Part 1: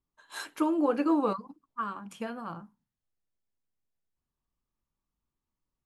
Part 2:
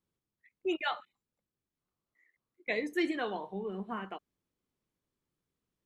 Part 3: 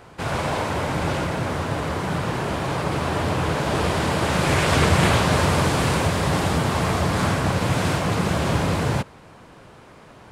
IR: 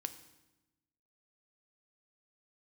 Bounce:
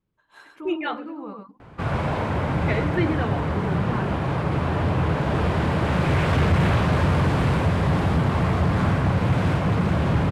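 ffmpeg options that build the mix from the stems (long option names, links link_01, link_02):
-filter_complex "[0:a]alimiter=limit=-23dB:level=0:latency=1:release=18,volume=-7.5dB,asplit=2[link_01][link_02];[link_02]volume=-4.5dB[link_03];[1:a]volume=2.5dB,asplit=2[link_04][link_05];[link_05]volume=-7.5dB[link_06];[2:a]asoftclip=type=hard:threshold=-17dB,adelay=1600,volume=-2dB[link_07];[3:a]atrim=start_sample=2205[link_08];[link_06][link_08]afir=irnorm=-1:irlink=0[link_09];[link_03]aecho=0:1:102:1[link_10];[link_01][link_04][link_07][link_09][link_10]amix=inputs=5:normalize=0,bass=frequency=250:gain=6,treble=frequency=4000:gain=-14"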